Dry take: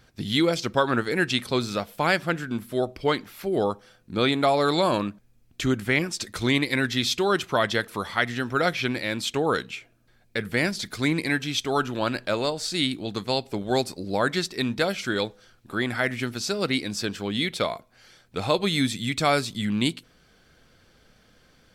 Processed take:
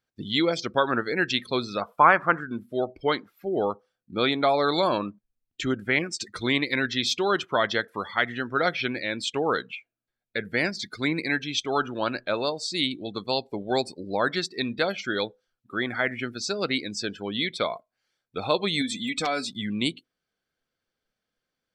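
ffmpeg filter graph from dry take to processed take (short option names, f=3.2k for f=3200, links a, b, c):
-filter_complex "[0:a]asettb=1/sr,asplit=3[a][b][c];[a]atrim=end=1.814[d];[b]atrim=start=1.81:end=2.41,asetpts=PTS-STARTPTS,afade=t=in:d=0.004:c=qsin,afade=t=out:st=0.596:d=0.004:c=qsin,acrossover=split=2600[e][f];[f]acompressor=threshold=-45dB:ratio=4:attack=1:release=60[g];[e][g]amix=inputs=2:normalize=0,equalizer=f=1.1k:w=1.7:g=13.5[h];[c]atrim=start=2.406[i];[d][h]acrossfade=d=0.004:c1=hsin:c2=qsin[j];[j][i]acrossfade=d=0.004:c1=qsin:c2=hsin,asettb=1/sr,asplit=3[k][l][m];[k]atrim=end=18.814[n];[l]atrim=start=18.81:end=19.52,asetpts=PTS-STARTPTS,afade=t=in:d=0.004:c=qsin,afade=t=out:st=0.706:d=0.004:c=qsin,aecho=1:1:4:0.7,atrim=end_sample=31311,acompressor=threshold=-22dB:ratio=4:attack=3.2:release=140:knee=1:detection=peak,aeval=exprs='(mod(5.96*val(0)+1,2)-1)/5.96':c=same[o];[m]atrim=start=19.516[p];[n][o]acrossfade=d=0.004:c1=hsin:c2=qsin[q];[q][p]acrossfade=d=0.004:c1=qsin:c2=hsin,afftdn=nr=24:nf=-36,lowshelf=f=160:g=-11"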